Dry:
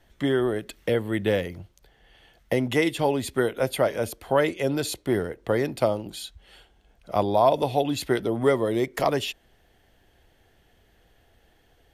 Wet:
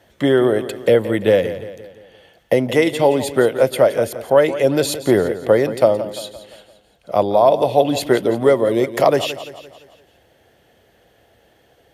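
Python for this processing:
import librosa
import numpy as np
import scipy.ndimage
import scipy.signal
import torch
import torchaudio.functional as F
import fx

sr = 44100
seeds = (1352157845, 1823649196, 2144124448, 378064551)

y = scipy.signal.sosfilt(scipy.signal.butter(2, 94.0, 'highpass', fs=sr, output='sos'), x)
y = fx.peak_eq(y, sr, hz=550.0, db=7.0, octaves=0.64)
y = fx.rider(y, sr, range_db=3, speed_s=0.5)
y = fx.echo_feedback(y, sr, ms=172, feedback_pct=49, wet_db=-13.5)
y = y * 10.0 ** (5.0 / 20.0)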